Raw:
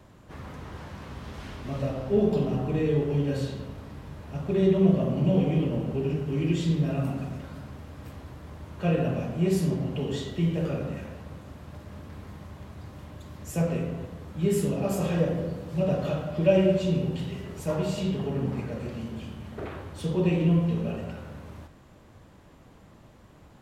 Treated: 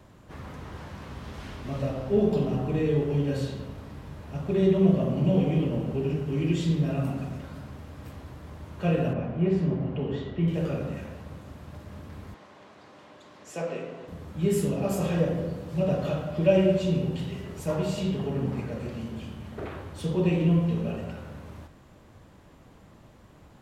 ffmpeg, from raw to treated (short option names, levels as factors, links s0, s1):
-filter_complex "[0:a]asettb=1/sr,asplit=3[s0][s1][s2];[s0]atrim=end=9.134[s3];[s1]atrim=start=9.13:end=10.48,asetpts=PTS-STARTPTS,afade=t=in:d=0.004:c=qsin,afade=t=out:st=1.346:d=0.004:c=qsin,lowpass=2300[s4];[s2]atrim=start=10.476[s5];[s3][s4]acrossfade=d=0.004:c1=hsin:c2=qsin[s6];[s6][s5]acrossfade=d=0.004:c1=qsin:c2=hsin,asettb=1/sr,asplit=3[s7][s8][s9];[s7]atrim=end=12.344[s10];[s8]atrim=start=12.34:end=14.08,asetpts=PTS-STARTPTS,afade=t=in:d=0.004:c=qsin,afade=t=out:st=1.736:d=0.004:c=qsin,highpass=360,lowpass=6200[s11];[s9]atrim=start=14.076[s12];[s10][s11]acrossfade=d=0.004:c1=hsin:c2=qsin[s13];[s13][s12]acrossfade=d=0.004:c1=qsin:c2=hsin"